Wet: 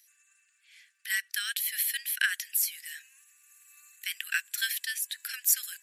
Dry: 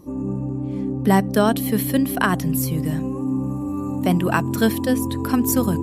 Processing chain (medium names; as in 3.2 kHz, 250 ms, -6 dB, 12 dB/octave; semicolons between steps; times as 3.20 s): steep high-pass 1.6 kHz 72 dB/octave